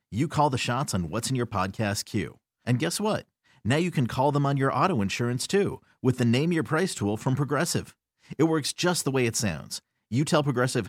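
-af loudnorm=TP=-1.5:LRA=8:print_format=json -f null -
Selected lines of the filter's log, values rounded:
"input_i" : "-26.3",
"input_tp" : "-9.4",
"input_lra" : "2.4",
"input_thresh" : "-36.7",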